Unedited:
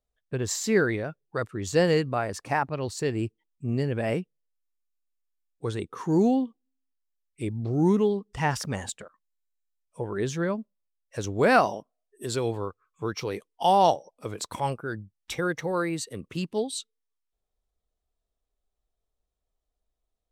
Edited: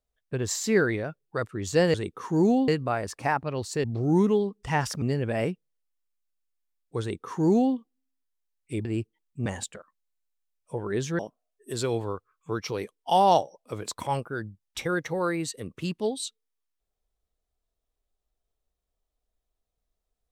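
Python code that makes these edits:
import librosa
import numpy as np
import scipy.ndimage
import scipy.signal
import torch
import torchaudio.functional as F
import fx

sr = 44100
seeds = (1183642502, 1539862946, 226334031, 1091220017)

y = fx.edit(x, sr, fx.swap(start_s=3.1, length_s=0.61, other_s=7.54, other_length_s=1.18),
    fx.duplicate(start_s=5.7, length_s=0.74, to_s=1.94),
    fx.cut(start_s=10.45, length_s=1.27), tone=tone)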